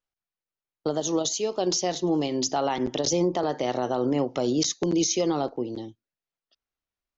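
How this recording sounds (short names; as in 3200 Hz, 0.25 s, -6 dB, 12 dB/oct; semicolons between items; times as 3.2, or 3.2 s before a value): noise floor -93 dBFS; spectral tilt -4.0 dB/oct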